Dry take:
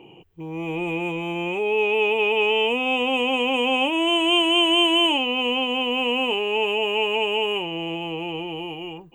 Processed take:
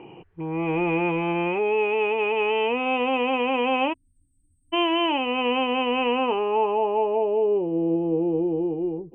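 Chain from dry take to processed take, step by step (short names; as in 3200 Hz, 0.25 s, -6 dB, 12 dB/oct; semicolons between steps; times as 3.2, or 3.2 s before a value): low-pass sweep 1700 Hz -> 420 Hz, 6.04–7.71; spectral delete 3.93–4.73, 290–8000 Hz; vocal rider within 3 dB 0.5 s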